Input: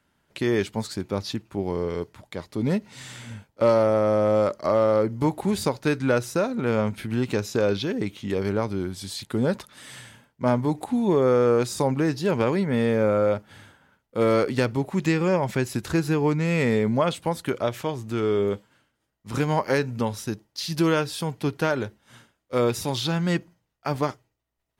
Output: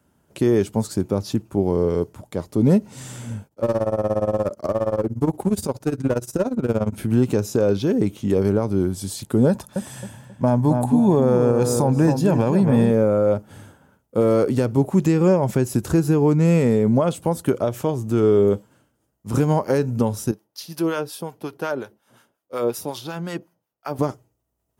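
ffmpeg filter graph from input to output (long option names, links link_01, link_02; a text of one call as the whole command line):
ffmpeg -i in.wav -filter_complex "[0:a]asettb=1/sr,asplit=3[link_01][link_02][link_03];[link_01]atrim=end=3.474[link_04];[link_02]atrim=start=3.47:end=6.93,asetpts=PTS-STARTPTS,afade=type=in:duration=0.004:curve=qsin,afade=type=out:start_time=3.456:duration=0.004:curve=qsin,tremolo=f=17:d=0.89,aeval=exprs='clip(val(0),-1,0.0422)':channel_layout=same[link_05];[link_03]atrim=start=6.926[link_06];[link_04][link_05]acrossfade=duration=0.004:curve1=hsin:curve2=qsin[link_07];[link_07][link_06]acrossfade=duration=0.004:curve1=qsin:curve2=hsin,asettb=1/sr,asplit=3[link_08][link_09][link_10];[link_08]atrim=end=9.494[link_11];[link_09]atrim=start=9.49:end=12.91,asetpts=PTS-STARTPTS,afade=type=in:duration=0.004:curve=qsin,afade=type=out:start_time=3.416:duration=0.004:curve=qsin,aecho=1:1:1.2:0.4,atrim=end_sample=150822,asplit=2[link_12][link_13];[link_13]adelay=268,lowpass=frequency=2100:poles=1,volume=-7.5dB,asplit=2[link_14][link_15];[link_15]adelay=268,lowpass=frequency=2100:poles=1,volume=0.31,asplit=2[link_16][link_17];[link_17]adelay=268,lowpass=frequency=2100:poles=1,volume=0.31,asplit=2[link_18][link_19];[link_19]adelay=268,lowpass=frequency=2100:poles=1,volume=0.31[link_20];[link_12][link_14][link_16][link_18][link_20]amix=inputs=5:normalize=0,atrim=end_sample=150822[link_21];[link_10]atrim=start=12.906[link_22];[link_11][link_21]acrossfade=duration=0.004:curve1=hsin:curve2=qsin[link_23];[link_23][link_22]acrossfade=duration=0.004:curve1=qsin:curve2=hsin,asettb=1/sr,asplit=3[link_24][link_25][link_26];[link_24]atrim=end=20.314[link_27];[link_25]atrim=start=20.31:end=23.99,asetpts=PTS-STARTPTS,afade=type=in:duration=0.004:curve=qsin,afade=type=out:start_time=3.676:duration=0.004:curve=qsin,highpass=frequency=620:poles=1,equalizer=frequency=7500:width_type=o:width=0.69:gain=-8.5,acrossover=split=840[link_28][link_29];[link_28]aeval=exprs='val(0)*(1-0.7/2+0.7/2*cos(2*PI*5.5*n/s))':channel_layout=same[link_30];[link_29]aeval=exprs='val(0)*(1-0.7/2-0.7/2*cos(2*PI*5.5*n/s))':channel_layout=same[link_31];[link_30][link_31]amix=inputs=2:normalize=0[link_32];[link_26]atrim=start=23.986[link_33];[link_27][link_32]acrossfade=duration=0.004:curve1=hsin:curve2=qsin[link_34];[link_34][link_33]acrossfade=duration=0.004:curve1=qsin:curve2=hsin,highpass=46,alimiter=limit=-15.5dB:level=0:latency=1:release=185,equalizer=frequency=1000:width_type=o:width=1:gain=-3,equalizer=frequency=2000:width_type=o:width=1:gain=-11,equalizer=frequency=4000:width_type=o:width=1:gain=-10,volume=8.5dB" out.wav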